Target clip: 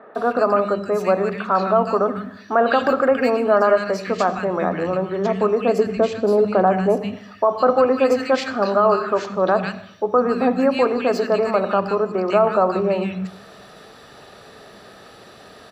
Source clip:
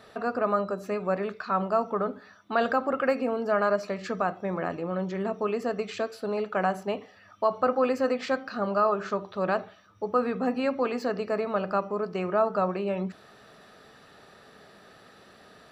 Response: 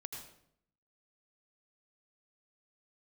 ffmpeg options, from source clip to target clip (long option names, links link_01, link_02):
-filter_complex "[0:a]asettb=1/sr,asplit=3[link_01][link_02][link_03];[link_01]atrim=end=5.684[link_04];[link_02]atrim=start=5.68:end=6.98,asetpts=PTS-STARTPTS,afade=type=in:duration=0.004:curve=qsin,afade=type=out:start_time=1.296:duration=0.004:curve=qsin,tiltshelf=frequency=820:gain=6.5[link_05];[link_03]atrim=start=6.976[link_06];[link_04][link_05]acrossfade=duration=0.004:curve1=hsin:curve2=qsin[link_07];[link_07][link_06]acrossfade=duration=0.004:curve1=qsin:curve2=hsin,acrossover=split=200|1700[link_08][link_09][link_10];[link_10]adelay=150[link_11];[link_08]adelay=180[link_12];[link_12][link_09][link_11]amix=inputs=3:normalize=0,asplit=2[link_13][link_14];[1:a]atrim=start_sample=2205[link_15];[link_14][link_15]afir=irnorm=-1:irlink=0,volume=-7.5dB[link_16];[link_13][link_16]amix=inputs=2:normalize=0,alimiter=level_in=13.5dB:limit=-1dB:release=50:level=0:latency=1,volume=-5dB"